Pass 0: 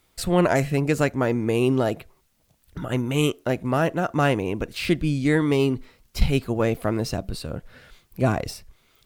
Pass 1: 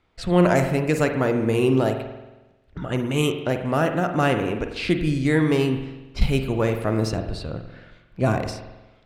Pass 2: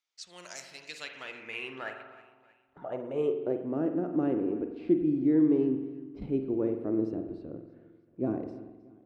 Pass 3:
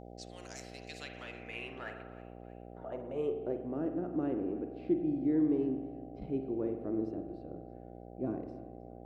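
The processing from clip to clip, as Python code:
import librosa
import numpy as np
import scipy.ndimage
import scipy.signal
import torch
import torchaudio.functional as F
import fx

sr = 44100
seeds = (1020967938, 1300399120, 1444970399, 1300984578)

y1 = fx.env_lowpass(x, sr, base_hz=2600.0, full_db=-19.0)
y1 = fx.rev_spring(y1, sr, rt60_s=1.1, pass_ms=(45,), chirp_ms=35, drr_db=6.0)
y2 = fx.filter_sweep_bandpass(y1, sr, from_hz=6100.0, to_hz=320.0, start_s=0.47, end_s=3.72, q=3.5)
y2 = fx.echo_feedback(y2, sr, ms=315, feedback_pct=46, wet_db=-20)
y3 = fx.dmg_buzz(y2, sr, base_hz=60.0, harmonics=13, level_db=-44.0, tilt_db=-1, odd_only=False)
y3 = F.gain(torch.from_numpy(y3), -5.5).numpy()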